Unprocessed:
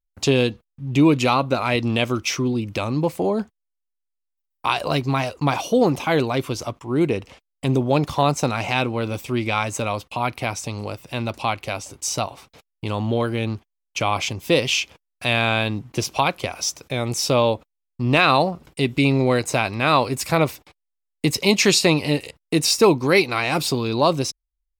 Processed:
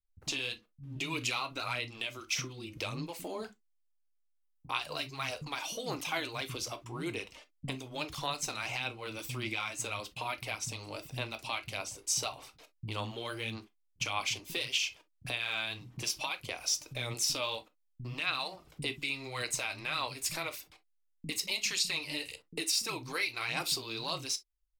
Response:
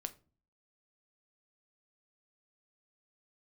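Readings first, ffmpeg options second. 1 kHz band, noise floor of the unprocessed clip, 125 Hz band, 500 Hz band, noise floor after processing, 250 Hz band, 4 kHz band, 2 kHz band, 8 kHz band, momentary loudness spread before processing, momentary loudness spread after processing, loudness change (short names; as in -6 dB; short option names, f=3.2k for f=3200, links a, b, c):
-17.0 dB, -79 dBFS, -19.5 dB, -21.5 dB, -74 dBFS, -22.5 dB, -9.0 dB, -11.0 dB, -7.5 dB, 11 LU, 10 LU, -14.0 dB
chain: -filter_complex "[0:a]acrossover=split=1200[a][b];[a]acompressor=threshold=-28dB:ratio=10[c];[c][b]amix=inputs=2:normalize=0,alimiter=limit=-16dB:level=0:latency=1:release=466,aphaser=in_gain=1:out_gain=1:delay=3.4:decay=0.43:speed=1.7:type=sinusoidal,acrossover=split=210[d][e];[e]adelay=50[f];[d][f]amix=inputs=2:normalize=0[g];[1:a]atrim=start_sample=2205,atrim=end_sample=3087[h];[g][h]afir=irnorm=-1:irlink=0,adynamicequalizer=threshold=0.00631:dfrequency=2100:dqfactor=0.7:tfrequency=2100:tqfactor=0.7:attack=5:release=100:ratio=0.375:range=2.5:mode=boostabove:tftype=highshelf,volume=-6.5dB"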